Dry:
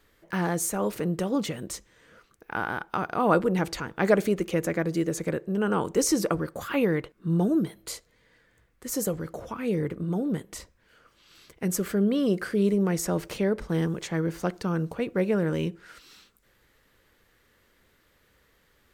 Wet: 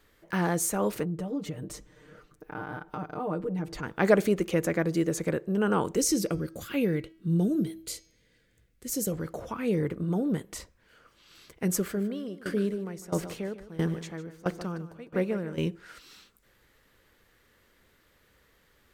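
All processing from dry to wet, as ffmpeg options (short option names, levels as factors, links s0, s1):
-filter_complex "[0:a]asettb=1/sr,asplit=3[s0][s1][s2];[s0]atrim=end=1.034[s3];[s1]atrim=start=1.03:end=3.83,asetpts=PTS-STARTPTS,afade=t=in:d=0.004:c=qsin,afade=t=out:st=2.796:d=0.004:c=qsin,tiltshelf=f=770:g=5.5,aecho=1:1:6.6:0.91,atrim=end_sample=123480,acompressor=threshold=0.01:ratio=2:attack=3.2:release=140:knee=1:detection=peak[s4];[s2]atrim=start=3.826[s5];[s3][s4]acrossfade=d=0.004:c1=hsin:c2=qsin[s6];[s6][s5]acrossfade=d=0.004:c1=qsin:c2=hsin,asettb=1/sr,asplit=3[s7][s8][s9];[s7]atrim=end=5.964[s10];[s8]atrim=start=5.96:end=9.12,asetpts=PTS-STARTPTS,afade=t=in:d=0.004:c=qsin,afade=t=out:st=3.156:d=0.004:c=qsin,equalizer=f=1000:t=o:w=1.4:g=-14,bandreject=f=1800:w=19,bandreject=f=323.8:t=h:w=4,bandreject=f=647.6:t=h:w=4,bandreject=f=971.4:t=h:w=4,bandreject=f=1295.2:t=h:w=4,bandreject=f=1619:t=h:w=4,bandreject=f=1942.8:t=h:w=4,bandreject=f=2266.6:t=h:w=4,bandreject=f=2590.4:t=h:w=4,bandreject=f=2914.2:t=h:w=4,bandreject=f=3238:t=h:w=4,bandreject=f=3561.8:t=h:w=4,bandreject=f=3885.6:t=h:w=4,bandreject=f=4209.4:t=h:w=4,bandreject=f=4533.2:t=h:w=4,bandreject=f=4857:t=h:w=4,bandreject=f=5180.8:t=h:w=4,bandreject=f=5504.6:t=h:w=4,bandreject=f=5828.4:t=h:w=4,bandreject=f=6152.2:t=h:w=4,bandreject=f=6476:t=h:w=4[s11];[s9]atrim=start=9.116[s12];[s10][s11]acrossfade=d=0.004:c1=hsin:c2=qsin[s13];[s13][s12]acrossfade=d=0.004:c1=qsin:c2=hsin,asettb=1/sr,asplit=3[s14][s15][s16];[s14]atrim=end=11.794[s17];[s15]atrim=start=11.79:end=15.58,asetpts=PTS-STARTPTS,afade=t=in:d=0.004:c=qsin,afade=t=out:st=3.786:d=0.004:c=qsin,aecho=1:1:152|304|456|608|760:0.316|0.139|0.0612|0.0269|0.0119,atrim=end_sample=167139,aeval=exprs='val(0)*pow(10,-19*if(lt(mod(1.5*n/s,1),2*abs(1.5)/1000),1-mod(1.5*n/s,1)/(2*abs(1.5)/1000),(mod(1.5*n/s,1)-2*abs(1.5)/1000)/(1-2*abs(1.5)/1000))/20)':c=same[s18];[s16]atrim=start=15.576[s19];[s17][s18]acrossfade=d=0.004:c1=hsin:c2=qsin[s20];[s20][s19]acrossfade=d=0.004:c1=qsin:c2=hsin"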